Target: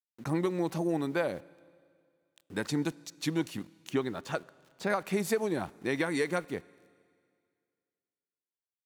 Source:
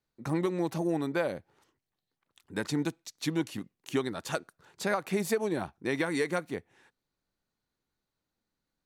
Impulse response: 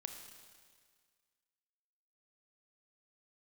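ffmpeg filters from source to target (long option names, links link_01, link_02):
-filter_complex "[0:a]asettb=1/sr,asplit=3[link_01][link_02][link_03];[link_01]atrim=end=3.904[link_04];[link_02]atrim=start=3.9:end=4.9,asetpts=PTS-STARTPTS,afade=type=in:duration=0.004:curve=qsin,afade=type=out:start_time=0.996:duration=0.004:curve=qsin,lowpass=frequency=2800:poles=1[link_05];[link_03]atrim=start=4.896[link_06];[link_04][link_05]acrossfade=duration=0.004:curve1=hsin:curve2=qsin[link_07];[link_07][link_06]acrossfade=duration=0.004:curve1=qsin:curve2=hsin,aeval=exprs='val(0)*gte(abs(val(0)),0.00237)':channel_layout=same,asplit=2[link_08][link_09];[1:a]atrim=start_sample=2205,asetrate=37044,aresample=44100[link_10];[link_09][link_10]afir=irnorm=-1:irlink=0,volume=-13.5dB[link_11];[link_08][link_11]amix=inputs=2:normalize=0,volume=-1.5dB"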